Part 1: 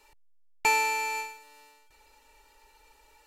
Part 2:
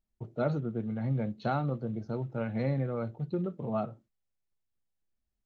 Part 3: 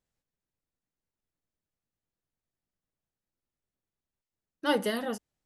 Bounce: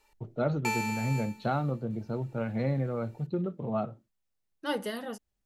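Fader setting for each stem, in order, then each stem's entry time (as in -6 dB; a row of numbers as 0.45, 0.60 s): -7.5, +1.0, -5.0 dB; 0.00, 0.00, 0.00 s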